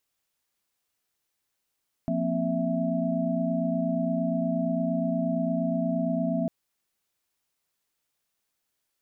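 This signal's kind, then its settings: chord F3/A#3/C4/E5 sine, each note -29.5 dBFS 4.40 s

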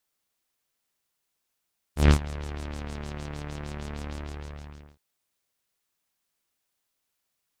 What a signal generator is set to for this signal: synth patch with filter wobble D2, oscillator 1 saw, noise -17 dB, filter lowpass, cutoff 3000 Hz, Q 1.5, filter envelope 1 oct, attack 0.136 s, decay 0.09 s, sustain -19 dB, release 0.87 s, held 2.15 s, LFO 6.5 Hz, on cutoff 1.1 oct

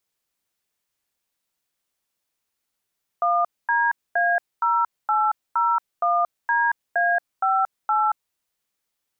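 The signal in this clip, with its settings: DTMF "1DA0801DA58", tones 0.228 s, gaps 0.239 s, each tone -20 dBFS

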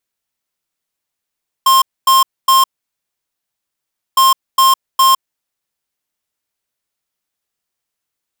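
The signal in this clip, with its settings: beep pattern square 1060 Hz, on 0.16 s, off 0.25 s, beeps 3, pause 1.53 s, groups 2, -9 dBFS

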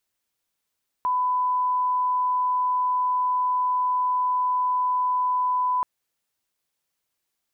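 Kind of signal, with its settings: line-up tone -20 dBFS 4.78 s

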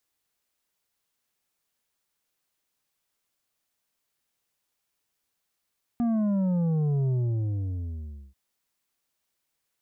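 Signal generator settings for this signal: sub drop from 240 Hz, over 2.34 s, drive 7 dB, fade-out 1.25 s, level -23 dB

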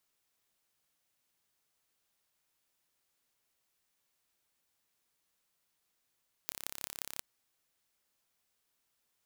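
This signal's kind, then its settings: pulse train 34.1/s, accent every 6, -8.5 dBFS 0.73 s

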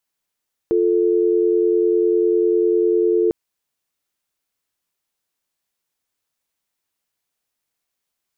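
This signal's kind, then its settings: call progress tone dial tone, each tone -16.5 dBFS 2.60 s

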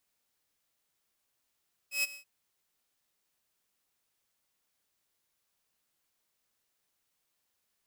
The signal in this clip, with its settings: ADSR saw 2560 Hz, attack 0.124 s, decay 24 ms, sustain -18 dB, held 0.23 s, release 0.103 s -23 dBFS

